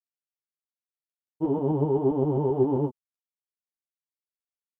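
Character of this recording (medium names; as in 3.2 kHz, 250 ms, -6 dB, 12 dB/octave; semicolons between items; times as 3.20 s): a quantiser's noise floor 12-bit, dither none; tremolo saw up 7.6 Hz, depth 45%; a shimmering, thickened sound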